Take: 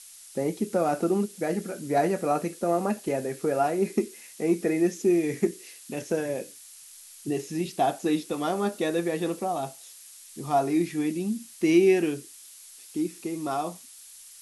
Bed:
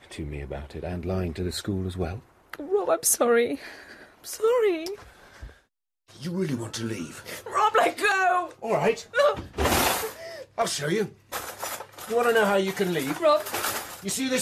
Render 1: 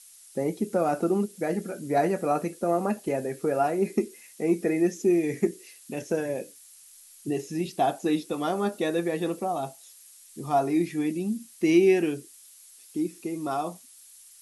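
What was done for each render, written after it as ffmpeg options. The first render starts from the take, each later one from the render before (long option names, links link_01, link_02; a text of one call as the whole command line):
ffmpeg -i in.wav -af "afftdn=noise_reduction=6:noise_floor=-48" out.wav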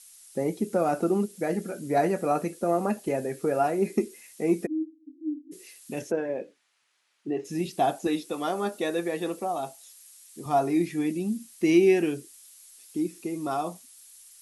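ffmpeg -i in.wav -filter_complex "[0:a]asplit=3[link_01][link_02][link_03];[link_01]afade=type=out:start_time=4.65:duration=0.02[link_04];[link_02]asuperpass=centerf=290:order=20:qfactor=4.8,afade=type=in:start_time=4.65:duration=0.02,afade=type=out:start_time=5.51:duration=0.02[link_05];[link_03]afade=type=in:start_time=5.51:duration=0.02[link_06];[link_04][link_05][link_06]amix=inputs=3:normalize=0,asplit=3[link_07][link_08][link_09];[link_07]afade=type=out:start_time=6.1:duration=0.02[link_10];[link_08]highpass=220,lowpass=2100,afade=type=in:start_time=6.1:duration=0.02,afade=type=out:start_time=7.44:duration=0.02[link_11];[link_09]afade=type=in:start_time=7.44:duration=0.02[link_12];[link_10][link_11][link_12]amix=inputs=3:normalize=0,asettb=1/sr,asplit=3[link_13][link_14][link_15];[link_13]atrim=end=8.074[link_16];[link_14]atrim=start=8.07:end=10.46,asetpts=PTS-STARTPTS,afade=type=in:duration=0.004:curve=qsin,afade=type=out:start_time=2.386:duration=0.004:curve=qsin,highpass=frequency=280:poles=1[link_17];[link_15]atrim=start=10.456[link_18];[link_16][link_17]acrossfade=duration=0.004:curve1=hsin:curve2=qsin[link_19];[link_19][link_18]acrossfade=duration=0.004:curve1=qsin:curve2=hsin" out.wav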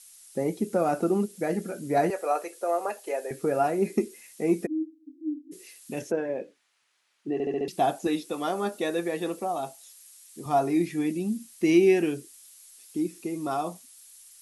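ffmpeg -i in.wav -filter_complex "[0:a]asettb=1/sr,asplit=3[link_01][link_02][link_03];[link_01]atrim=end=2.104[link_04];[link_02]atrim=start=2.1:end=3.31,asetpts=PTS-STARTPTS,afade=type=in:duration=0.004:curve=qsin,afade=type=out:start_time=1.206:duration=0.004:curve=qsin,highpass=frequency=440:width=0.5412,highpass=frequency=440:width=1.3066[link_05];[link_03]atrim=start=3.306[link_06];[link_04][link_05]acrossfade=duration=0.004:curve1=hsin:curve2=qsin[link_07];[link_07][link_06]acrossfade=duration=0.004:curve1=qsin:curve2=hsin,asplit=6[link_08][link_09][link_10][link_11][link_12][link_13];[link_08]atrim=end=7.402[link_14];[link_09]atrim=start=7.328:end=7.402[link_15];[link_10]atrim=start=7.328:end=7.402[link_16];[link_11]atrim=start=7.328:end=7.402[link_17];[link_12]atrim=start=7.328:end=7.402[link_18];[link_13]atrim=start=7.678[link_19];[link_14][link_15]acrossfade=duration=0.004:curve1=hsin:curve2=hsin[link_20];[link_20][link_16]acrossfade=duration=0.004:curve1=hsin:curve2=hsin[link_21];[link_21][link_17]acrossfade=duration=0.004:curve1=hsin:curve2=hsin[link_22];[link_22][link_18]acrossfade=duration=0.004:curve1=hsin:curve2=hsin[link_23];[link_23][link_19]acrossfade=duration=0.004:curve1=hsin:curve2=hsin" out.wav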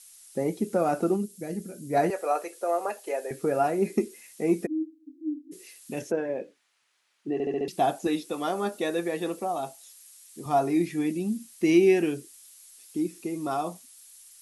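ffmpeg -i in.wav -filter_complex "[0:a]asplit=3[link_01][link_02][link_03];[link_01]afade=type=out:start_time=1.15:duration=0.02[link_04];[link_02]equalizer=frequency=1100:width=0.46:gain=-14.5,afade=type=in:start_time=1.15:duration=0.02,afade=type=out:start_time=1.92:duration=0.02[link_05];[link_03]afade=type=in:start_time=1.92:duration=0.02[link_06];[link_04][link_05][link_06]amix=inputs=3:normalize=0" out.wav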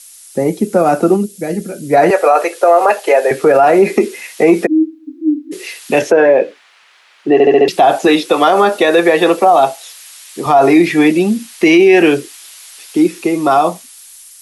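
ffmpeg -i in.wav -filter_complex "[0:a]acrossover=split=210|400|4300[link_01][link_02][link_03][link_04];[link_03]dynaudnorm=framelen=770:gausssize=5:maxgain=14.5dB[link_05];[link_01][link_02][link_05][link_04]amix=inputs=4:normalize=0,alimiter=level_in=13dB:limit=-1dB:release=50:level=0:latency=1" out.wav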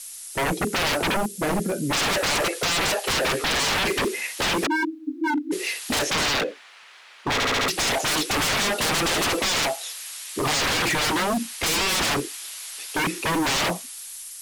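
ffmpeg -i in.wav -af "aeval=exprs='0.126*(abs(mod(val(0)/0.126+3,4)-2)-1)':channel_layout=same" out.wav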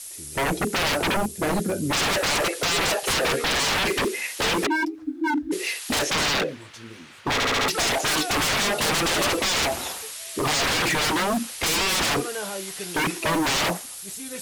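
ffmpeg -i in.wav -i bed.wav -filter_complex "[1:a]volume=-11.5dB[link_01];[0:a][link_01]amix=inputs=2:normalize=0" out.wav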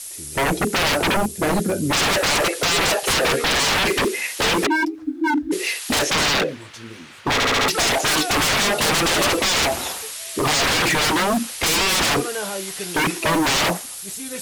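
ffmpeg -i in.wav -af "volume=4dB" out.wav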